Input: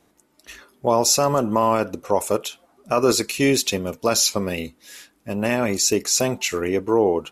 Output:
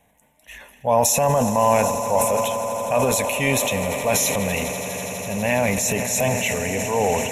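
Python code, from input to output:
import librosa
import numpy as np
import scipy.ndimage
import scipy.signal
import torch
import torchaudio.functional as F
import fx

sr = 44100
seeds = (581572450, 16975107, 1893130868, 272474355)

y = fx.fixed_phaser(x, sr, hz=1300.0, stages=6)
y = fx.echo_swell(y, sr, ms=82, loudest=8, wet_db=-17)
y = fx.transient(y, sr, attack_db=-4, sustain_db=7)
y = F.gain(torch.from_numpy(y), 4.0).numpy()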